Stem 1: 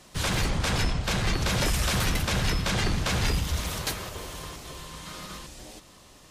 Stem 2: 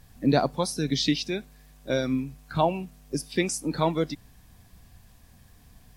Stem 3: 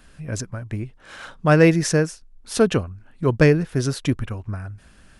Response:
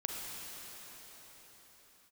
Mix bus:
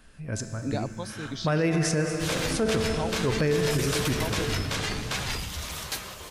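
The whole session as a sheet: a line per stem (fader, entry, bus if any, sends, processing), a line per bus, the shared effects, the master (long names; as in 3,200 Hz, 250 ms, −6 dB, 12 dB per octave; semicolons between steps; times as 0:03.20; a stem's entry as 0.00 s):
−0.5 dB, 2.05 s, no send, tilt shelving filter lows −3.5 dB, about 630 Hz; bit reduction 11 bits; flanger 0.63 Hz, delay 7 ms, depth 9.2 ms, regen +63%
−10.0 dB, 0.40 s, no send, no processing
+2.0 dB, 0.00 s, send −3.5 dB, tuned comb filter 220 Hz, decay 1.2 s, mix 70%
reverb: on, pre-delay 33 ms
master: brickwall limiter −16 dBFS, peak gain reduction 9.5 dB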